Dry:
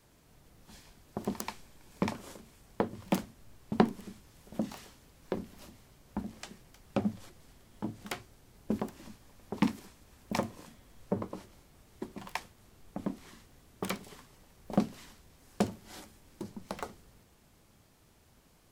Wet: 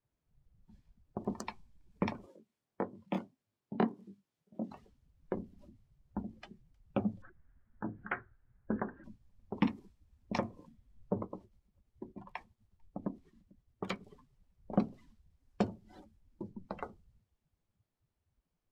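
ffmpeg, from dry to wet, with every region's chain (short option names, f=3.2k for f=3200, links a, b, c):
-filter_complex "[0:a]asettb=1/sr,asplit=3[a][b][c];[a]atrim=end=2.264[d];[b]atrim=start=2.26:end=4.71,asetpts=PTS-STARTPTS,afade=t=in:d=0.004:c=qsin,afade=t=out:st=2.446:d=0.004:c=qsin,highpass=150,flanger=delay=20:depth=6.2:speed=1.6[e];[c]atrim=start=4.706[f];[d][e]acrossfade=d=0.004:c1=hsin:c2=qsin[g];[g][f]acrossfade=d=0.004:c1=qsin:c2=hsin,asettb=1/sr,asplit=3[h][i][j];[h]atrim=end=7.224[k];[i]atrim=start=7.22:end=9.04,asetpts=PTS-STARTPTS,afade=t=in:d=0.004:c=qsin,afade=t=out:st=1.816:d=0.004:c=qsin,lowpass=f=1.6k:t=q:w=4.1,bandreject=f=50:t=h:w=6,bandreject=f=100:t=h:w=6,bandreject=f=150:t=h:w=6,bandreject=f=200:t=h:w=6,bandreject=f=250:t=h:w=6,bandreject=f=300:t=h:w=6,bandreject=f=350:t=h:w=6,bandreject=f=400:t=h:w=6,bandreject=f=450:t=h:w=6,bandreject=f=500:t=h:w=6[l];[j]atrim=start=9.036[m];[k][l]acrossfade=d=0.004:c1=hsin:c2=qsin[n];[n][m]acrossfade=d=0.004:c1=qsin:c2=hsin,asettb=1/sr,asplit=3[o][p][q];[o]atrim=end=11.234[r];[p]atrim=start=11.23:end=14.06,asetpts=PTS-STARTPTS,afade=t=in:d=0.004:c=qsin,afade=t=out:st=2.826:d=0.004:c=qsin,tremolo=f=9.3:d=0.37,aecho=1:1:445:0.0668,atrim=end_sample=124803[s];[q]atrim=start=14.056[t];[r][s]acrossfade=d=0.004:c1=hsin:c2=qsin[u];[u][t]acrossfade=d=0.004:c1=qsin:c2=hsin,aemphasis=mode=reproduction:type=cd,afftdn=nr=22:nf=-46,adynamicequalizer=threshold=0.00224:dfrequency=2500:dqfactor=0.7:tfrequency=2500:tqfactor=0.7:attack=5:release=100:ratio=0.375:range=3.5:mode=boostabove:tftype=highshelf,volume=-2.5dB"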